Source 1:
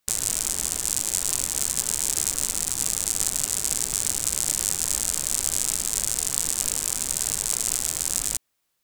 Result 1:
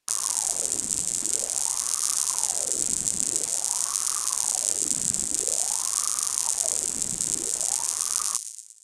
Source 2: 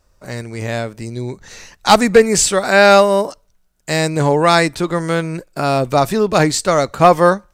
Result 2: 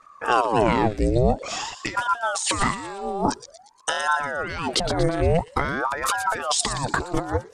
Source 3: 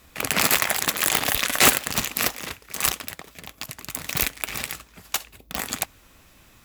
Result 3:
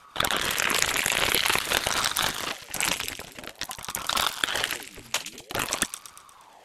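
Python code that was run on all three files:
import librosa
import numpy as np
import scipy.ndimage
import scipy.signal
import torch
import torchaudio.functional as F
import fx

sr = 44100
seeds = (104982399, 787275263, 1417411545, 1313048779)

p1 = fx.envelope_sharpen(x, sr, power=1.5)
p2 = scipy.signal.sosfilt(scipy.signal.butter(4, 11000.0, 'lowpass', fs=sr, output='sos'), p1)
p3 = fx.dynamic_eq(p2, sr, hz=2700.0, q=1.3, threshold_db=-34.0, ratio=4.0, max_db=5)
p4 = fx.over_compress(p3, sr, threshold_db=-24.0, ratio=-1.0)
p5 = p4 + fx.echo_wet_highpass(p4, sr, ms=118, feedback_pct=49, hz=3100.0, wet_db=-9.0, dry=0)
p6 = fx.ring_lfo(p5, sr, carrier_hz=690.0, swing_pct=75, hz=0.49)
y = p6 * librosa.db_to_amplitude(2.0)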